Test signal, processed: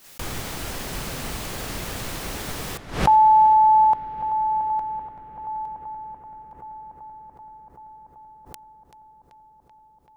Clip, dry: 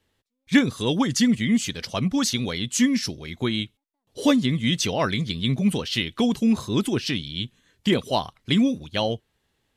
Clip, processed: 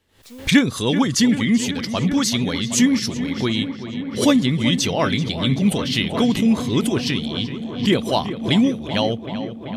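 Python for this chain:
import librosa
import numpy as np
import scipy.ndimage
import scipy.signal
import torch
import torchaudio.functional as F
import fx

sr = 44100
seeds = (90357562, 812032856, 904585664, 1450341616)

p1 = x + fx.echo_filtered(x, sr, ms=384, feedback_pct=84, hz=3600.0, wet_db=-12.0, dry=0)
p2 = fx.pre_swell(p1, sr, db_per_s=120.0)
y = p2 * librosa.db_to_amplitude(3.0)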